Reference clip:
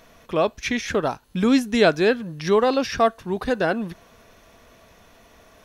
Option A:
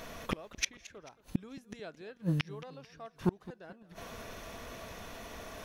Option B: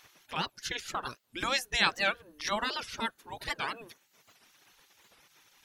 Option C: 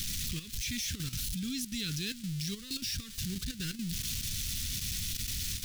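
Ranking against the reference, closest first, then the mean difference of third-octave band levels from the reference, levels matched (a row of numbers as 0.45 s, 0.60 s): B, A, C; 7.5 dB, 14.5 dB, 19.5 dB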